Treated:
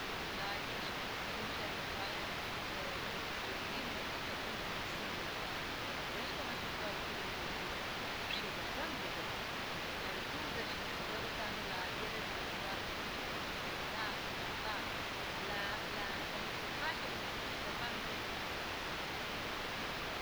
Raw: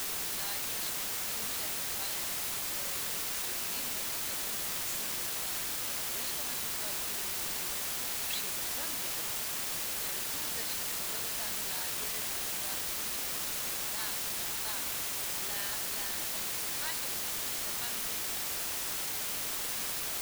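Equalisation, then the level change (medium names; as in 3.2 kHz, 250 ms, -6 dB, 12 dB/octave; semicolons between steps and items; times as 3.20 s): distance through air 300 m; treble shelf 10 kHz +3 dB; +4.0 dB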